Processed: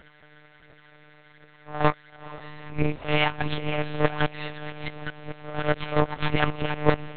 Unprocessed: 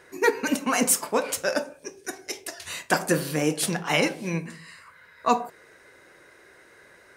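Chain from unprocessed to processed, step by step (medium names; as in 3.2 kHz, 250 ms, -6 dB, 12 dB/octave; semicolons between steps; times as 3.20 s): reverse the whole clip; phaser 1.4 Hz, delay 2.8 ms, feedback 60%; half-wave rectifier; on a send: echo that smears into a reverb 460 ms, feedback 58%, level -16 dB; on the sum: monotone LPC vocoder at 8 kHz 150 Hz; trim +1.5 dB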